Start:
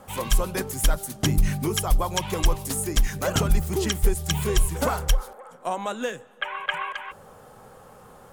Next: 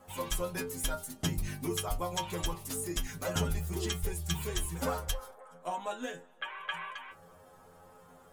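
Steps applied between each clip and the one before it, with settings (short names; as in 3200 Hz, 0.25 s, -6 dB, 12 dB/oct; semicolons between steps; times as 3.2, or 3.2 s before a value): metallic resonator 85 Hz, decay 0.28 s, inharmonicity 0.002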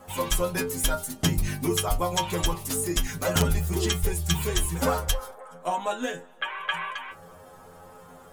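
wrapped overs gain 19.5 dB; gain +8.5 dB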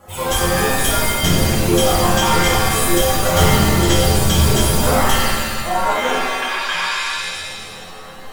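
shimmer reverb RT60 1.5 s, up +7 st, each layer -2 dB, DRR -6.5 dB; gain +1 dB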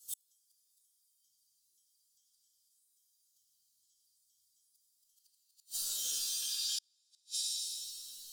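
inverse Chebyshev high-pass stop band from 2300 Hz, stop band 40 dB; compressor 12:1, threshold -30 dBFS, peak gain reduction 12.5 dB; flipped gate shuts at -24 dBFS, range -41 dB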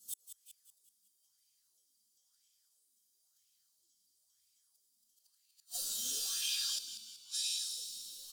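on a send: frequency-shifting echo 0.188 s, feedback 51%, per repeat -57 Hz, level -10 dB; on the sum: LFO bell 1 Hz 210–2500 Hz +16 dB; gain -1.5 dB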